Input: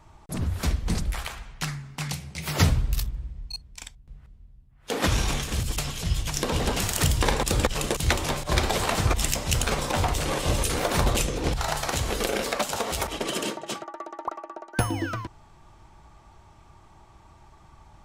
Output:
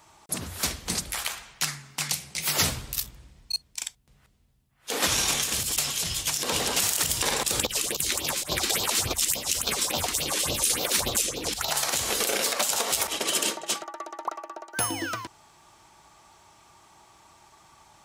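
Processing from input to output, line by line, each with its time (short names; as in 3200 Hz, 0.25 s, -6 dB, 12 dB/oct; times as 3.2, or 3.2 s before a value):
7.6–11.71 phaser stages 4, 3.5 Hz, lowest notch 100–1900 Hz
whole clip: HPF 380 Hz 6 dB/oct; high shelf 3500 Hz +11.5 dB; limiter -11.5 dBFS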